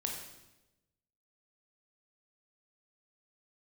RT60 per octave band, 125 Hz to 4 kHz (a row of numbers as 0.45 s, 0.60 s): 1.4 s, 1.2 s, 1.1 s, 0.90 s, 0.90 s, 0.90 s